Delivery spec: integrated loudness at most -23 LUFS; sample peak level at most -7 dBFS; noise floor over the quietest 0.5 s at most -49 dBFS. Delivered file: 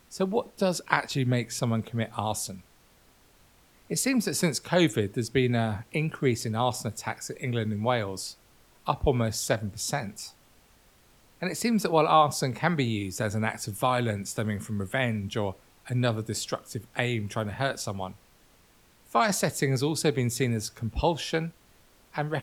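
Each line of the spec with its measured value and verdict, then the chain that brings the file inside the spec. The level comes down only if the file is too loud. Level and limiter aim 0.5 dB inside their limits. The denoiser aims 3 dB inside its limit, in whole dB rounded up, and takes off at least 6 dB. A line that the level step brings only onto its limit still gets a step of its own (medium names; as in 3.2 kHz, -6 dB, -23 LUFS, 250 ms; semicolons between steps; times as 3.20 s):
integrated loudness -28.0 LUFS: pass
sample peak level -4.0 dBFS: fail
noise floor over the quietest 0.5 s -60 dBFS: pass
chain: peak limiter -7.5 dBFS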